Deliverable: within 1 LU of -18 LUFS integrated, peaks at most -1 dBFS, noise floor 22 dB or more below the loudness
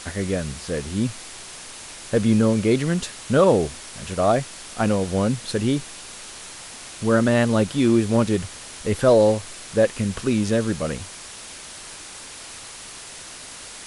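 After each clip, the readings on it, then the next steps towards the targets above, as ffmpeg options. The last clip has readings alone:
noise floor -39 dBFS; noise floor target -44 dBFS; loudness -21.5 LUFS; peak level -5.0 dBFS; loudness target -18.0 LUFS
-> -af "afftdn=nr=6:nf=-39"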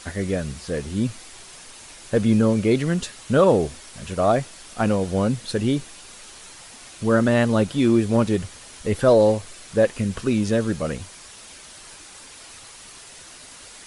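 noise floor -44 dBFS; loudness -21.5 LUFS; peak level -5.0 dBFS; loudness target -18.0 LUFS
-> -af "volume=1.5"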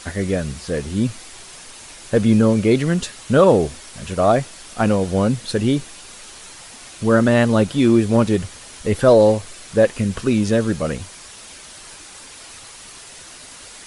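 loudness -18.0 LUFS; peak level -1.5 dBFS; noise floor -40 dBFS

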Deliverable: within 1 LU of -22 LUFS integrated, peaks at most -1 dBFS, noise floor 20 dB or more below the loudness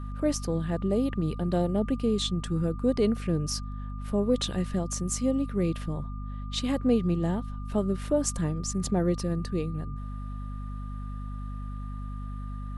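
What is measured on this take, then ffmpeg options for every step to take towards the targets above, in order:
hum 50 Hz; highest harmonic 250 Hz; hum level -33 dBFS; steady tone 1.2 kHz; tone level -47 dBFS; loudness -29.5 LUFS; peak level -12.5 dBFS; loudness target -22.0 LUFS
-> -af "bandreject=f=50:t=h:w=4,bandreject=f=100:t=h:w=4,bandreject=f=150:t=h:w=4,bandreject=f=200:t=h:w=4,bandreject=f=250:t=h:w=4"
-af "bandreject=f=1200:w=30"
-af "volume=2.37"

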